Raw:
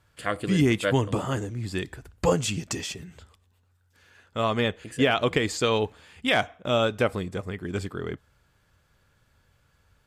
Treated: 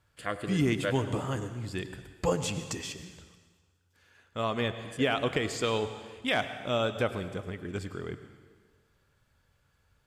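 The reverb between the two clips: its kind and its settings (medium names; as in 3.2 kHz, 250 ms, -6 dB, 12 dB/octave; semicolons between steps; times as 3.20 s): plate-style reverb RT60 1.4 s, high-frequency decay 1×, pre-delay 85 ms, DRR 10.5 dB; trim -5.5 dB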